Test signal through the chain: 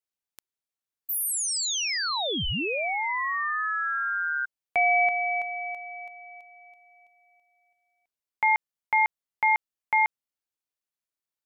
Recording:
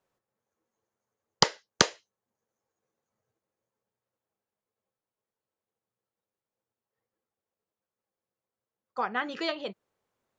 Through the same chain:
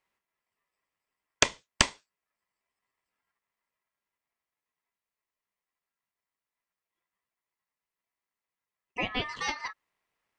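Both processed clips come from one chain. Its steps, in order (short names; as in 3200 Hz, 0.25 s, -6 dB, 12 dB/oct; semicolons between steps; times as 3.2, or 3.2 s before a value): ring modulator 1500 Hz; gain +1.5 dB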